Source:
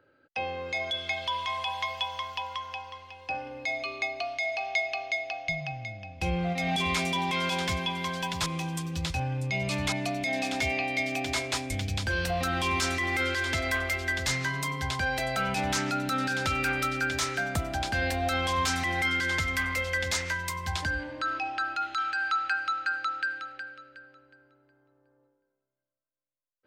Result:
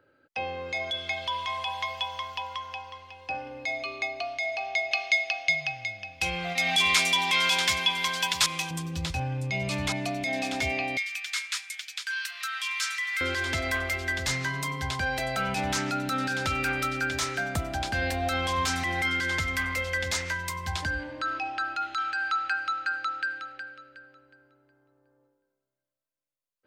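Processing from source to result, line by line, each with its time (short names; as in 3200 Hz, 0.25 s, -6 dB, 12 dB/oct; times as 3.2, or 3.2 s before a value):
4.91–8.71 tilt shelf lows -9.5 dB, about 790 Hz
10.97–13.21 steep high-pass 1300 Hz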